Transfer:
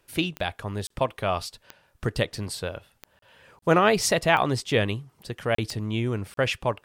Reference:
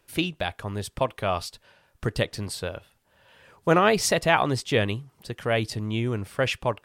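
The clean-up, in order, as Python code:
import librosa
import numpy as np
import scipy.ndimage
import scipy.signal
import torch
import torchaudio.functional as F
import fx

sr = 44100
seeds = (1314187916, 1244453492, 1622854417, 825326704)

y = fx.fix_declick_ar(x, sr, threshold=10.0)
y = fx.fix_interpolate(y, sr, at_s=(0.87, 3.19, 3.59, 5.55, 6.34), length_ms=33.0)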